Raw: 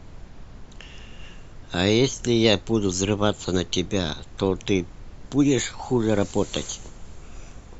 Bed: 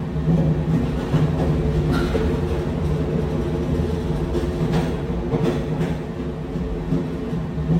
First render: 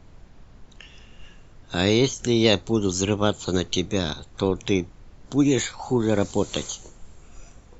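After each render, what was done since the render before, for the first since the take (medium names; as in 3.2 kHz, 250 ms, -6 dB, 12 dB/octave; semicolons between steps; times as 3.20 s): noise print and reduce 6 dB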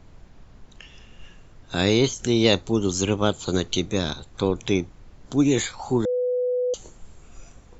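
6.05–6.74 s: bleep 497 Hz -20.5 dBFS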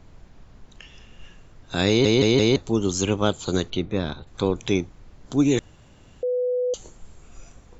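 1.88 s: stutter in place 0.17 s, 4 plays; 3.70–4.27 s: distance through air 280 m; 5.59–6.23 s: room tone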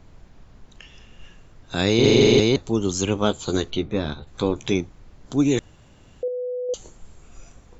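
1.94–2.40 s: flutter echo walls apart 7.5 m, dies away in 0.96 s; 3.14–4.74 s: doubling 14 ms -8 dB; 6.28–6.69 s: gain -4.5 dB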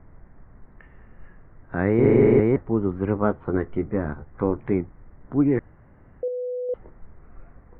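Chebyshev low-pass 2 kHz, order 5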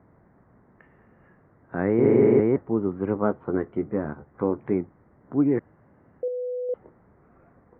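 Bessel high-pass 170 Hz, order 2; treble shelf 2.1 kHz -10.5 dB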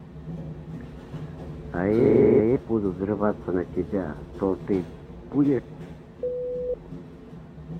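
add bed -17.5 dB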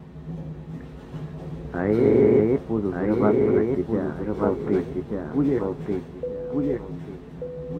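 doubling 19 ms -11 dB; feedback delay 1186 ms, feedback 24%, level -3.5 dB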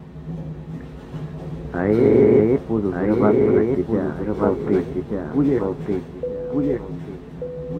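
trim +3.5 dB; peak limiter -3 dBFS, peak gain reduction 1.5 dB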